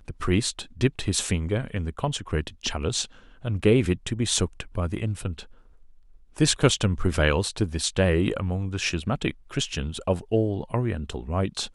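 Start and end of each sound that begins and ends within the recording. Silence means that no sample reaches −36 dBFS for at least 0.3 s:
0:03.44–0:05.43

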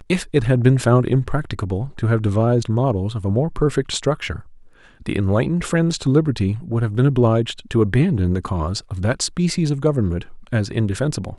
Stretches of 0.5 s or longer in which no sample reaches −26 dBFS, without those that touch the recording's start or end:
0:04.39–0:05.06

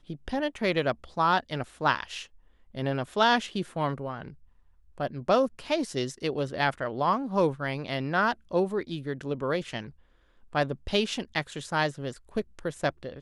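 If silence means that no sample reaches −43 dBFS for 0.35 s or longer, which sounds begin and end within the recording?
0:02.75–0:04.33
0:04.98–0:09.90

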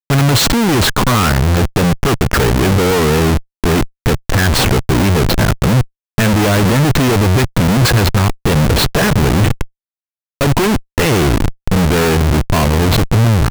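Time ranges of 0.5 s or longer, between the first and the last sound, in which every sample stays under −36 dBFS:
0:09.66–0:10.41

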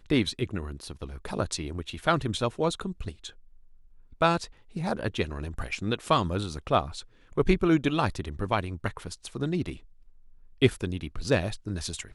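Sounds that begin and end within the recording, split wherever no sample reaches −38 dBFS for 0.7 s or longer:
0:04.21–0:09.77

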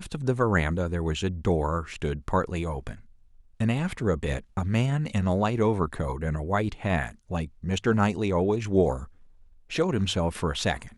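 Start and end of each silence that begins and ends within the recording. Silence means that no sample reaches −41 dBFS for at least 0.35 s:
0:03.01–0:03.60
0:09.06–0:09.70

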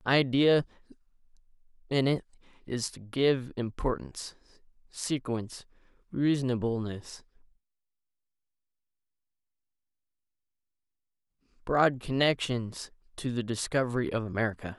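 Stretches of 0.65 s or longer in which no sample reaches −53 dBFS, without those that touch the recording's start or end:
0:07.45–0:11.62

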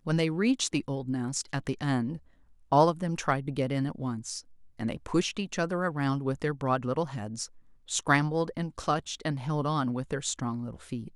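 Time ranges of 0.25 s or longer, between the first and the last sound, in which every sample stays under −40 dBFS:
0:02.18–0:02.72
0:04.40–0:04.80
0:07.46–0:07.88

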